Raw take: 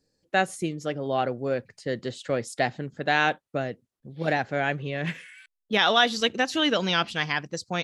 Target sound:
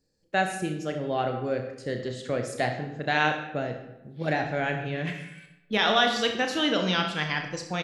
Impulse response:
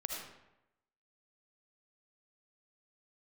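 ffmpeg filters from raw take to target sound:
-filter_complex "[0:a]aecho=1:1:33|64:0.355|0.251,asplit=2[link_01][link_02];[1:a]atrim=start_sample=2205,lowshelf=frequency=180:gain=9.5[link_03];[link_02][link_03]afir=irnorm=-1:irlink=0,volume=-2.5dB[link_04];[link_01][link_04]amix=inputs=2:normalize=0,volume=-7dB"

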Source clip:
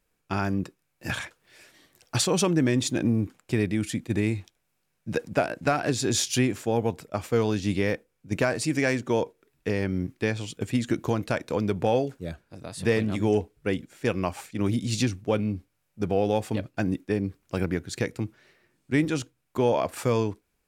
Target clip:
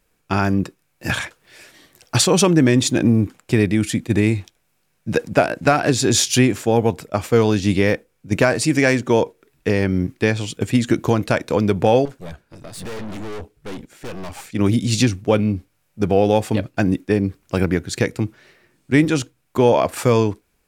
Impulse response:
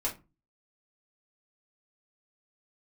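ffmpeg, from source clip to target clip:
-filter_complex "[0:a]asettb=1/sr,asplit=3[link_01][link_02][link_03];[link_01]atrim=end=12.054[link_04];[link_02]atrim=start=12.05:end=14.47,asetpts=PTS-STARTPTS,afade=type=in:duration=0.004:curve=qsin,afade=type=out:start_time=2.416:duration=0.004:curve=qsin,aeval=exprs='(tanh(79.4*val(0)+0.65)-tanh(0.65))/79.4':channel_layout=same[link_05];[link_03]atrim=start=14.466[link_06];[link_04][link_05]acrossfade=duration=0.004:curve1=hsin:curve2=qsin[link_07];[link_07][link_06]acrossfade=duration=0.004:curve1=qsin:curve2=hsin,volume=8.5dB"

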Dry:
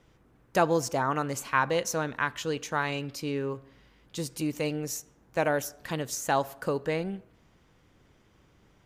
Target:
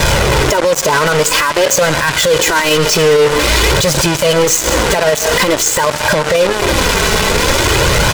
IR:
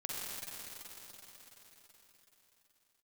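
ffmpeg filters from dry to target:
-filter_complex "[0:a]aeval=exprs='val(0)+0.5*0.0316*sgn(val(0))':channel_layout=same,aecho=1:1:2.2:0.71,acompressor=threshold=-31dB:ratio=4,asplit=2[link_01][link_02];[1:a]atrim=start_sample=2205,afade=type=out:start_time=0.26:duration=0.01,atrim=end_sample=11907[link_03];[link_02][link_03]afir=irnorm=-1:irlink=0,volume=-14.5dB[link_04];[link_01][link_04]amix=inputs=2:normalize=0,flanger=delay=1.3:depth=3.8:regen=-4:speed=0.45:shape=sinusoidal,asetrate=48000,aresample=44100,lowpass=frequency=8000:width=0.5412,lowpass=frequency=8000:width=1.3066,acrusher=bits=5:mix=0:aa=0.5,lowshelf=frequency=94:gain=-5.5,alimiter=level_in=34dB:limit=-1dB:release=50:level=0:latency=1,volume=-3.5dB"

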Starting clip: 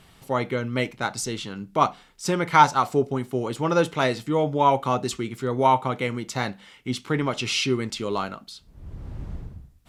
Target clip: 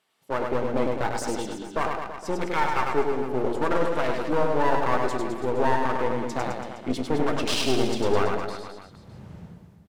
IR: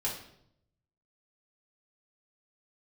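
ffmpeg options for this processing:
-filter_complex "[0:a]afwtdn=0.0562,highpass=380,dynaudnorm=framelen=360:gausssize=3:maxgain=14.5dB,alimiter=limit=-12dB:level=0:latency=1:release=113,aeval=exprs='clip(val(0),-1,0.0282)':channel_layout=same,aecho=1:1:100|210|331|464.1|610.5:0.631|0.398|0.251|0.158|0.1,asplit=2[link_01][link_02];[1:a]atrim=start_sample=2205[link_03];[link_02][link_03]afir=irnorm=-1:irlink=0,volume=-14dB[link_04];[link_01][link_04]amix=inputs=2:normalize=0,volume=-2dB"

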